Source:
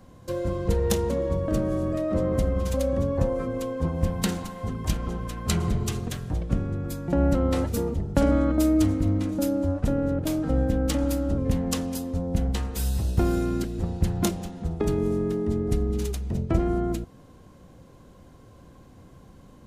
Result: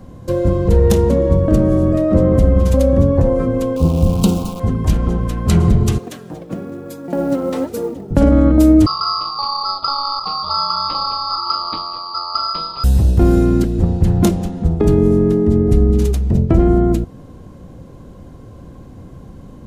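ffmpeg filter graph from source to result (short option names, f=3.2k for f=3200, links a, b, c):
-filter_complex "[0:a]asettb=1/sr,asplit=3[a][b][c];[a]atrim=end=3.764[d];[b]atrim=start=3.76:end=4.6,asetpts=PTS-STARTPTS,afade=t=in:d=0.004:c=qsin,afade=t=out:st=0.836:d=0.004:c=qsin,acrusher=bits=7:dc=4:mix=0:aa=0.000001,asuperstop=centerf=1800:order=4:qfactor=1.3[e];[c]atrim=start=4.596[f];[d][e]acrossfade=d=0.004:c1=hsin:c2=qsin[g];[g][f]acrossfade=d=0.004:c1=qsin:c2=hsin,asettb=1/sr,asplit=3[h][i][j];[h]atrim=end=5.984[k];[i]atrim=start=5.98:end=8.11,asetpts=PTS-STARTPTS,afade=t=in:d=0.004:c=qsin,afade=t=out:st=2.126:d=0.004:c=qsin,flanger=delay=1.5:depth=5.9:regen=48:speed=1.1:shape=triangular,highpass=290,acrusher=bits=6:mode=log:mix=0:aa=0.000001[l];[j]atrim=start=8.106[m];[k][l]acrossfade=d=0.004:c1=hsin:c2=qsin[n];[n][m]acrossfade=d=0.004:c1=qsin:c2=hsin,asettb=1/sr,asplit=3[o][p][q];[o]atrim=end=8.864[r];[p]atrim=start=8.86:end=12.84,asetpts=PTS-STARTPTS,afade=t=in:d=0.004:c=qsin,afade=t=out:st=3.976:d=0.004:c=qsin,lowpass=f=2.7k:t=q:w=0.5098,lowpass=f=2.7k:t=q:w=0.6013,lowpass=f=2.7k:t=q:w=0.9,lowpass=f=2.7k:t=q:w=2.563,afreqshift=-3200,aeval=exprs='val(0)*sin(2*PI*1800*n/s)':c=same[s];[q]atrim=start=12.836[t];[r][s]acrossfade=d=0.004:c1=hsin:c2=qsin[u];[u][t]acrossfade=d=0.004:c1=qsin:c2=hsin,tiltshelf=f=720:g=4.5,alimiter=level_in=10.5dB:limit=-1dB:release=50:level=0:latency=1,volume=-1dB"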